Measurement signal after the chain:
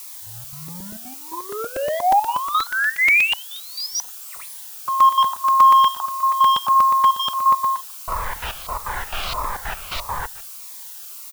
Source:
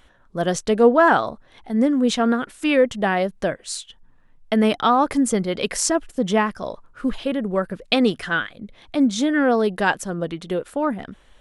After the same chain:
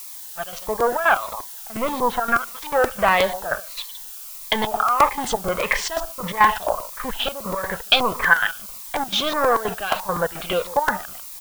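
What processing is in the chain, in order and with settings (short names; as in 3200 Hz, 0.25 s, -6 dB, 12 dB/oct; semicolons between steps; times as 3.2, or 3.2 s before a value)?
opening faded in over 2.24 s; two-slope reverb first 0.57 s, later 2.4 s, from -25 dB, DRR 15 dB; sample leveller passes 3; limiter -8 dBFS; echo 0.147 s -17.5 dB; LFO low-pass saw up 1.5 Hz 870–4100 Hz; step gate ".x.xx.xxxxx.x." 171 bpm -12 dB; bell 300 Hz -14.5 dB 1.1 oct; added noise blue -37 dBFS; ten-band EQ 125 Hz -10 dB, 250 Hz -6 dB, 1000 Hz +8 dB, 2000 Hz -3 dB; crackling interface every 0.12 s, samples 128, repeat, from 0.68; cascading phaser falling 1.6 Hz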